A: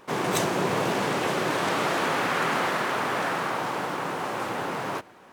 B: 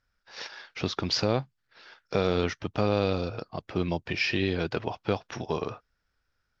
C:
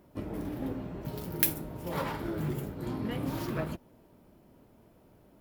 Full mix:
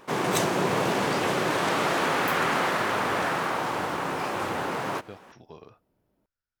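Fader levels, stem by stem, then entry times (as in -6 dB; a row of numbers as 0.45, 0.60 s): +0.5, -16.5, -13.5 dB; 0.00, 0.00, 0.85 s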